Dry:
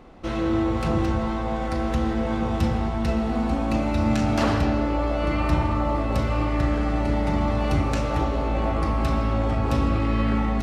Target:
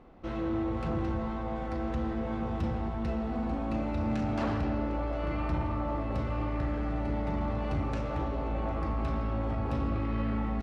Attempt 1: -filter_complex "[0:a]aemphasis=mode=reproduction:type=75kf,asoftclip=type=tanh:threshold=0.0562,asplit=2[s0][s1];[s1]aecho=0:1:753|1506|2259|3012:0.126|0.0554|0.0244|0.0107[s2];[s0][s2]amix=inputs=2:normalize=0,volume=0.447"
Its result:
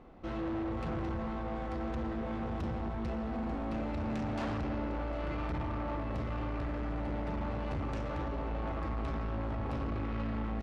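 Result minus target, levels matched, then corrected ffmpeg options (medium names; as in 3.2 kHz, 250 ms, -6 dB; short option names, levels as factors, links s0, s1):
saturation: distortion +10 dB
-filter_complex "[0:a]aemphasis=mode=reproduction:type=75kf,asoftclip=type=tanh:threshold=0.168,asplit=2[s0][s1];[s1]aecho=0:1:753|1506|2259|3012:0.126|0.0554|0.0244|0.0107[s2];[s0][s2]amix=inputs=2:normalize=0,volume=0.447"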